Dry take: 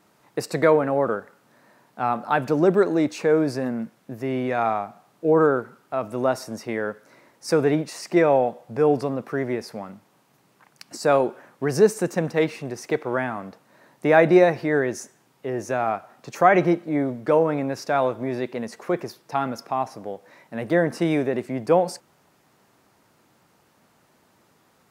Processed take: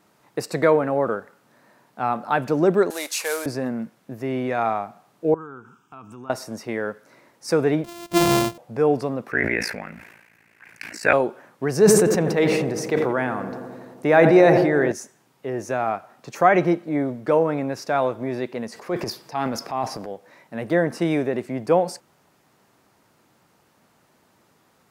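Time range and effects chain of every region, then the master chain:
0:02.90–0:03.46: variable-slope delta modulation 64 kbit/s + high-pass filter 520 Hz + spectral tilt +4.5 dB per octave
0:05.34–0:06.30: downward compressor 2.5 to 1, threshold −36 dBFS + phaser with its sweep stopped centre 2,900 Hz, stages 8
0:07.84–0:08.58: samples sorted by size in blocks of 128 samples + parametric band 1,700 Hz −5.5 dB 1 octave
0:09.31–0:11.13: flat-topped bell 2,000 Hz +16 dB 1 octave + ring modulation 28 Hz + level that may fall only so fast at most 49 dB per second
0:11.72–0:14.92: feedback echo with a low-pass in the loop 86 ms, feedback 83%, level −13 dB + level that may fall only so fast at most 29 dB per second
0:18.72–0:20.11: parametric band 4,800 Hz +8 dB 0.21 octaves + notch filter 1,400 Hz, Q 18 + transient designer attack −4 dB, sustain +9 dB
whole clip: no processing

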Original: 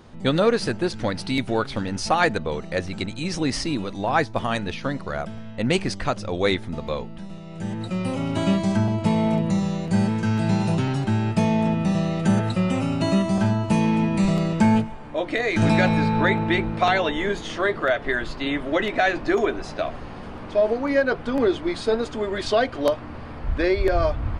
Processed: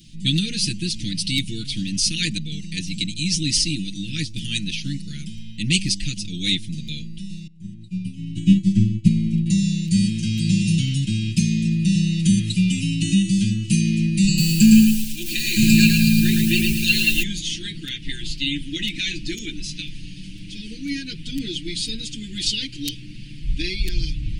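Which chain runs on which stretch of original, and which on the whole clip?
0:07.47–0:09.46: spectral tilt −2.5 dB per octave + expander for the loud parts 2.5 to 1, over −27 dBFS
0:14.27–0:17.23: EQ curve with evenly spaced ripples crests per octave 1.4, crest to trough 17 dB + feedback echo at a low word length 110 ms, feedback 35%, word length 6 bits, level −3 dB
whole clip: elliptic band-stop filter 250–2,700 Hz, stop band 60 dB; high-shelf EQ 3,000 Hz +11 dB; comb filter 6.2 ms, depth 99%

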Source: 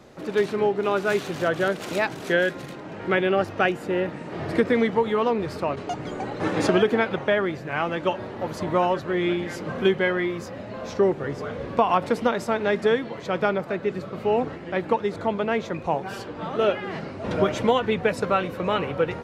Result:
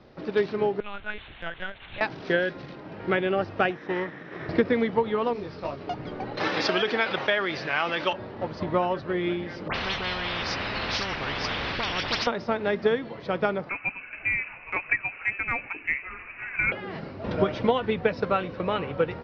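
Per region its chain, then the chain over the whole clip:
0:00.80–0:02.01: resonant band-pass 2,800 Hz, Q 1 + linear-prediction vocoder at 8 kHz pitch kept
0:03.70–0:04.49: lower of the sound and its delayed copy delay 0.53 ms + loudspeaker in its box 170–7,700 Hz, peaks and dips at 220 Hz −8 dB, 1,800 Hz +7 dB, 4,500 Hz −9 dB
0:05.33–0:05.81: variable-slope delta modulation 32 kbit/s + micro pitch shift up and down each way 24 cents
0:06.37–0:08.13: spectral tilt +4 dB per octave + envelope flattener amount 50%
0:09.68–0:12.27: all-pass dispersion highs, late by 71 ms, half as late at 2,300 Hz + every bin compressed towards the loudest bin 10 to 1
0:13.69–0:16.72: spectral tilt +2.5 dB per octave + voice inversion scrambler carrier 2,800 Hz
whole clip: Butterworth low-pass 5,500 Hz 72 dB per octave; low-shelf EQ 74 Hz +7 dB; transient designer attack +4 dB, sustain 0 dB; level −4.5 dB

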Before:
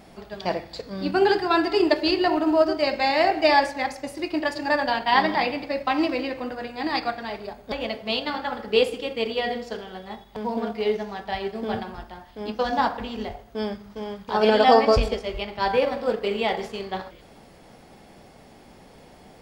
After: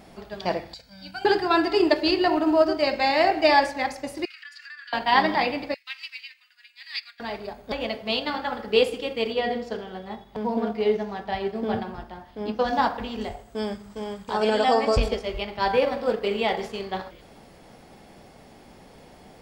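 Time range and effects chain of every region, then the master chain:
0:00.74–0:01.25: guitar amp tone stack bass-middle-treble 5-5-5 + comb filter 1.3 ms, depth 83%
0:04.25–0:04.93: Butterworth high-pass 1,300 Hz 72 dB per octave + high-shelf EQ 6,800 Hz −9.5 dB + downward compressor 5 to 1, threshold −40 dBFS
0:05.74–0:07.20: inverse Chebyshev high-pass filter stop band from 450 Hz, stop band 70 dB + expander for the loud parts, over −51 dBFS
0:09.33–0:12.68: high-pass filter 110 Hz 6 dB per octave + spectral tilt −1.5 dB per octave
0:13.21–0:14.97: parametric band 7,900 Hz +15 dB 0.3 octaves + downward compressor 1.5 to 1, threshold −24 dBFS
whole clip: no processing

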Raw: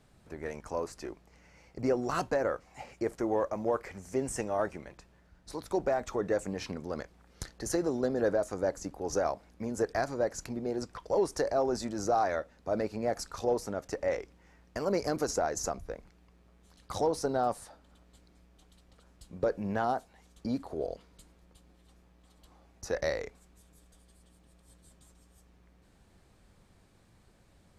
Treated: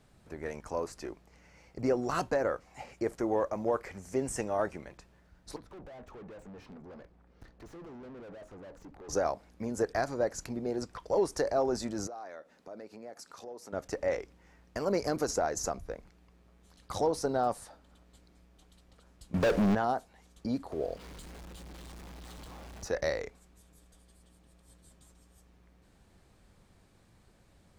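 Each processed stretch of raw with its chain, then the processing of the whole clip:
0:05.56–0:09.09: tube saturation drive 45 dB, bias 0.3 + wrap-around overflow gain 43.5 dB + low-pass filter 1,100 Hz 6 dB per octave
0:12.07–0:13.73: high-pass filter 200 Hz + downward compressor 2.5 to 1, threshold −49 dBFS
0:19.34–0:19.75: downward compressor 3 to 1, threshold −30 dBFS + leveller curve on the samples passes 5
0:20.72–0:22.88: converter with a step at zero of −49 dBFS + high-shelf EQ 9,300 Hz −5.5 dB + upward compression, threshold −41 dBFS
whole clip: no processing

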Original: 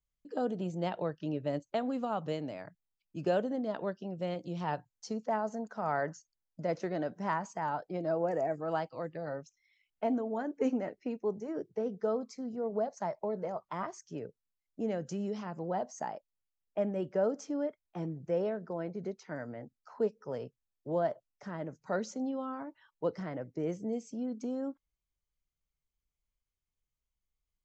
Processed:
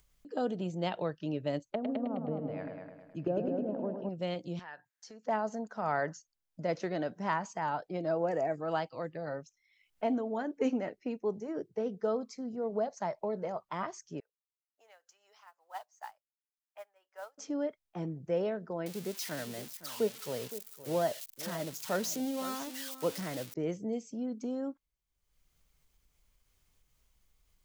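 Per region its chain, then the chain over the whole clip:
0:01.69–0:04.09: treble cut that deepens with the level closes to 480 Hz, closed at −31 dBFS + echo machine with several playback heads 105 ms, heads first and second, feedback 46%, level −7 dB
0:04.59–0:05.25: high-pass filter 540 Hz 6 dB per octave + parametric band 1,700 Hz +14.5 dB 0.49 octaves + downward compressor 2.5 to 1, threshold −51 dBFS
0:14.20–0:17.38: high-pass filter 850 Hz 24 dB per octave + noise that follows the level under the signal 20 dB + expander for the loud parts 2.5 to 1, over −50 dBFS
0:18.86–0:23.54: spike at every zero crossing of −32.5 dBFS + single-tap delay 515 ms −14 dB
whole clip: dynamic equaliser 3,400 Hz, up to +6 dB, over −54 dBFS, Q 0.86; upward compression, threshold −54 dBFS

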